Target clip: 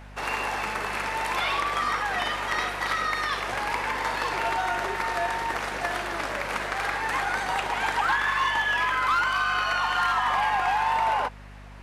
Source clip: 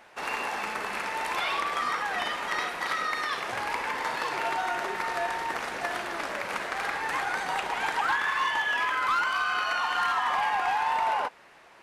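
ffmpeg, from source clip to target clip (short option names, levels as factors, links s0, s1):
-af "aeval=exprs='0.1*(cos(1*acos(clip(val(0)/0.1,-1,1)))-cos(1*PI/2))+0.00126*(cos(5*acos(clip(val(0)/0.1,-1,1)))-cos(5*PI/2))':c=same,aeval=exprs='val(0)+0.00501*(sin(2*PI*50*n/s)+sin(2*PI*2*50*n/s)/2+sin(2*PI*3*50*n/s)/3+sin(2*PI*4*50*n/s)/4+sin(2*PI*5*50*n/s)/5)':c=same,volume=1.33"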